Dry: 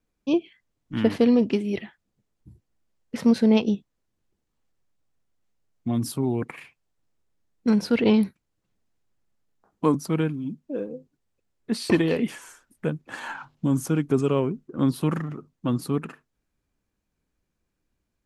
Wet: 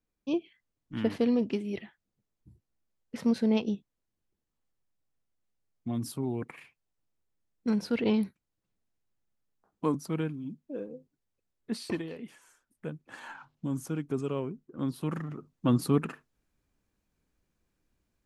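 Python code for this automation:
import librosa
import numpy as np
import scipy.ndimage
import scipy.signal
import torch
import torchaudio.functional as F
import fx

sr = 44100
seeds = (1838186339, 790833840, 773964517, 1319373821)

y = fx.gain(x, sr, db=fx.line((11.76, -7.5), (12.14, -18.5), (13.01, -10.0), (14.97, -10.0), (15.72, 0.5)))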